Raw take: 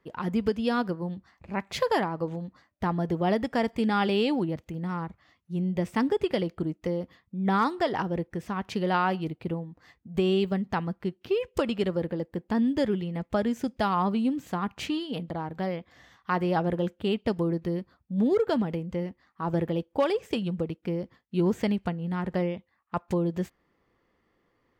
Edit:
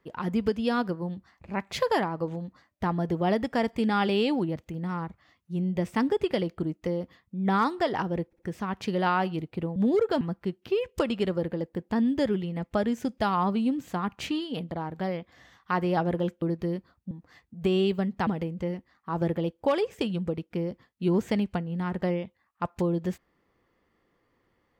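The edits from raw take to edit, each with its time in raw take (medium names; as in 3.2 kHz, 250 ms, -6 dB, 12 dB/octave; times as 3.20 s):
8.27 s: stutter 0.06 s, 3 plays
9.64–10.80 s: swap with 18.14–18.59 s
17.01–17.45 s: delete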